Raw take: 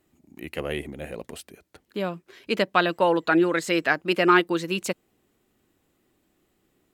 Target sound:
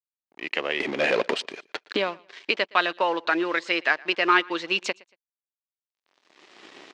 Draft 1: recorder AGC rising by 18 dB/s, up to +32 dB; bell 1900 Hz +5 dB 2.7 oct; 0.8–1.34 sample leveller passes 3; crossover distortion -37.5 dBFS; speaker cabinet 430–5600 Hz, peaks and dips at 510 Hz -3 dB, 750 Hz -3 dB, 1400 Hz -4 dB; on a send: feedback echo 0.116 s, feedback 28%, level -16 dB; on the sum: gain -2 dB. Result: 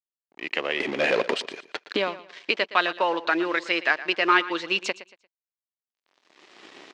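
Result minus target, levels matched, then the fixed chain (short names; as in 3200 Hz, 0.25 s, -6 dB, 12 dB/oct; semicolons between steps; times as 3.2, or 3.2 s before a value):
echo-to-direct +9 dB
recorder AGC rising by 18 dB/s, up to +32 dB; bell 1900 Hz +5 dB 2.7 oct; 0.8–1.34 sample leveller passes 3; crossover distortion -37.5 dBFS; speaker cabinet 430–5600 Hz, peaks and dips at 510 Hz -3 dB, 750 Hz -3 dB, 1400 Hz -4 dB; on a send: feedback echo 0.116 s, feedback 28%, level -25 dB; on the sum: gain -2 dB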